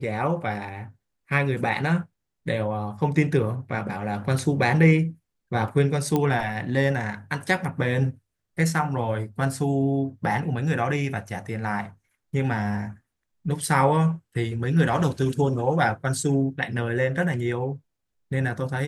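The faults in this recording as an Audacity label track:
6.160000	6.160000	click −11 dBFS

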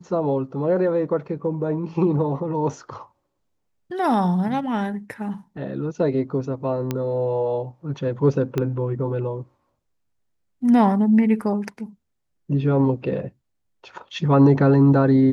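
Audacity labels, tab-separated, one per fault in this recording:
6.910000	6.910000	click −11 dBFS
8.580000	8.580000	click −11 dBFS

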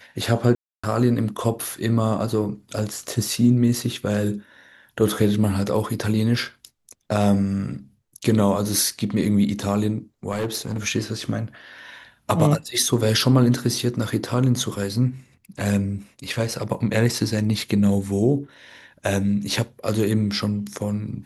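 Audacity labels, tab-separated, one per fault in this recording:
0.550000	0.830000	drop-out 285 ms
10.310000	10.770000	clipping −20.5 dBFS

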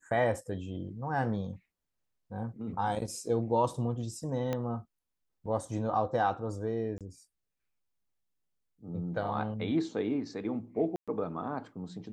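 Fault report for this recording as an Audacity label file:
4.530000	4.530000	click −19 dBFS
6.980000	7.010000	drop-out 27 ms
10.960000	11.080000	drop-out 116 ms

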